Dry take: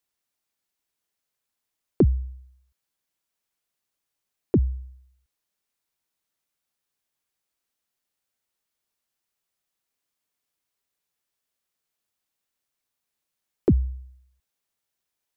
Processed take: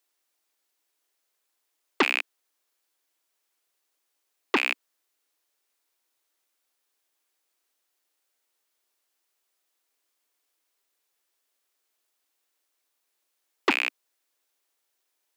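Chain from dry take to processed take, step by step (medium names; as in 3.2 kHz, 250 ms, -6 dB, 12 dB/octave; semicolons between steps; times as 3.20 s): rattle on loud lows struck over -27 dBFS, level -15 dBFS; steep high-pass 280 Hz 48 dB/octave; transformer saturation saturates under 2 kHz; trim +5.5 dB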